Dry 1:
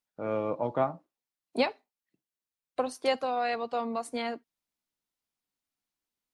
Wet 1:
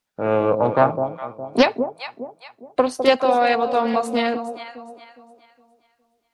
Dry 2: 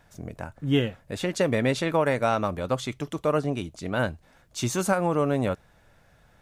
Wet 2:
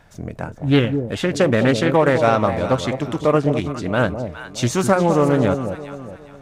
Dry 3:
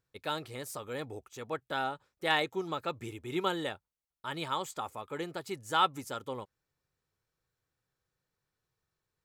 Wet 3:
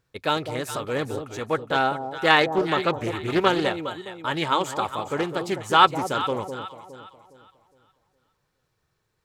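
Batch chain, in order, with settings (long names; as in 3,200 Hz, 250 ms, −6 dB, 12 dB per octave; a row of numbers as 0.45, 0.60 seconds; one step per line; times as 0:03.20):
high-shelf EQ 8,100 Hz −7 dB
on a send: delay that swaps between a low-pass and a high-pass 206 ms, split 820 Hz, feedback 58%, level −7 dB
on the sum: highs frequency-modulated by the lows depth 0.28 ms
normalise the peak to −2 dBFS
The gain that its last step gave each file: +11.5, +7.5, +11.0 decibels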